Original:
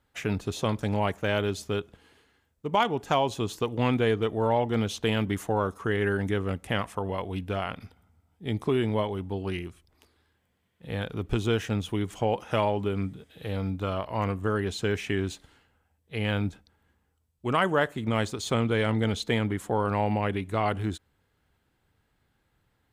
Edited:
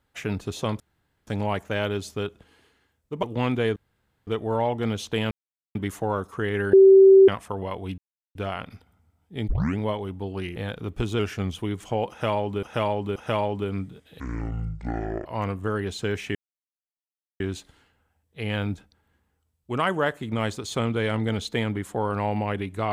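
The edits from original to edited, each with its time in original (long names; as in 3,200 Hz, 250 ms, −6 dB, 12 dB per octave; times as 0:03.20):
0:00.80: splice in room tone 0.47 s
0:02.76–0:03.65: remove
0:04.18: splice in room tone 0.51 s
0:05.22: splice in silence 0.44 s
0:06.20–0:06.75: beep over 386 Hz −8.5 dBFS
0:07.45: splice in silence 0.37 s
0:08.58: tape start 0.30 s
0:09.66–0:10.89: remove
0:11.52–0:11.85: play speed 92%
0:12.40–0:12.93: repeat, 3 plays
0:13.44–0:14.05: play speed 58%
0:15.15: splice in silence 1.05 s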